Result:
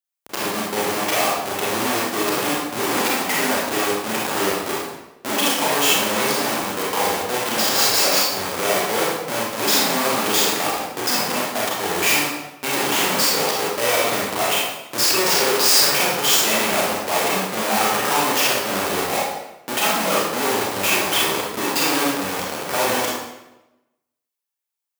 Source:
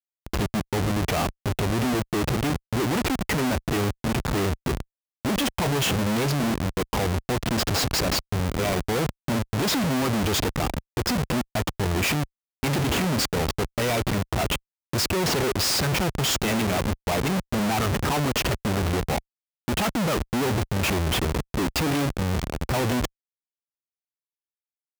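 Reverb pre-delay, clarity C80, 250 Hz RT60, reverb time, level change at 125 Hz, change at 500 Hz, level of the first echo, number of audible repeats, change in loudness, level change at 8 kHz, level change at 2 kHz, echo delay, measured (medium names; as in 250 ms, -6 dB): 28 ms, 3.0 dB, 1.0 s, 0.95 s, -11.5 dB, +5.0 dB, no echo, no echo, +6.0 dB, +10.0 dB, +7.5 dB, no echo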